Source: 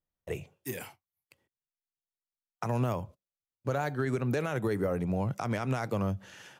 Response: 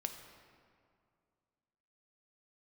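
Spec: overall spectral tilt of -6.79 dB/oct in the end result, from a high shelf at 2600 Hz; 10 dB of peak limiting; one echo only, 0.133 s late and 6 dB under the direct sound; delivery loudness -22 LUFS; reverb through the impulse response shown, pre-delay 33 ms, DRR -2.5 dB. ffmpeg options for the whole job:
-filter_complex "[0:a]highshelf=f=2.6k:g=4.5,alimiter=level_in=4.5dB:limit=-24dB:level=0:latency=1,volume=-4.5dB,aecho=1:1:133:0.501,asplit=2[a][b];[1:a]atrim=start_sample=2205,adelay=33[c];[b][c]afir=irnorm=-1:irlink=0,volume=3.5dB[d];[a][d]amix=inputs=2:normalize=0,volume=11dB"

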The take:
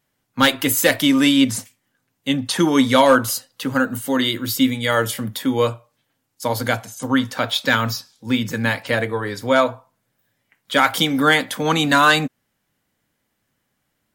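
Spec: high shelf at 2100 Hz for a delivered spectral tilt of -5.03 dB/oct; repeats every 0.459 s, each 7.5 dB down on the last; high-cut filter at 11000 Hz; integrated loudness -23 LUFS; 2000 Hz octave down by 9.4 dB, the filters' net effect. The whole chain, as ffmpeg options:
-af "lowpass=11k,equalizer=f=2k:t=o:g=-8,highshelf=f=2.1k:g=-9,aecho=1:1:459|918|1377|1836|2295:0.422|0.177|0.0744|0.0312|0.0131,volume=-2dB"

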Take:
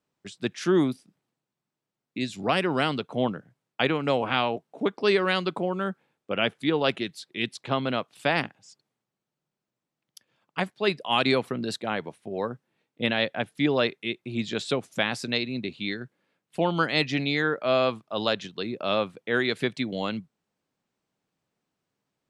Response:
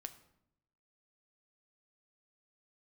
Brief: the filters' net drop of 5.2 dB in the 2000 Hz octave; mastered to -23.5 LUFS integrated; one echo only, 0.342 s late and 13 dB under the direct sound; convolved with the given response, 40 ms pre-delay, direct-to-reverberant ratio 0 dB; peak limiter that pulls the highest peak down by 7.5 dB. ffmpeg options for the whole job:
-filter_complex "[0:a]equalizer=f=2k:t=o:g=-7,alimiter=limit=-17.5dB:level=0:latency=1,aecho=1:1:342:0.224,asplit=2[a][b];[1:a]atrim=start_sample=2205,adelay=40[c];[b][c]afir=irnorm=-1:irlink=0,volume=4.5dB[d];[a][d]amix=inputs=2:normalize=0,volume=4dB"

